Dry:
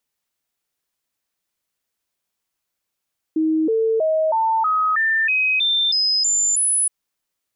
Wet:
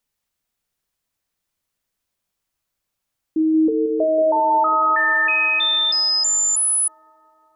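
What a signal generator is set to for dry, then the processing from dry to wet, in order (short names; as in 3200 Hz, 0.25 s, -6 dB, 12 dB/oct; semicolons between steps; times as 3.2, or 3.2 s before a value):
stepped sine 316 Hz up, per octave 2, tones 11, 0.32 s, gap 0.00 s -15.5 dBFS
low shelf 120 Hz +12 dB; notches 50/100/150/200/250/300/350/400/450 Hz; on a send: analogue delay 0.18 s, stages 2048, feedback 75%, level -10 dB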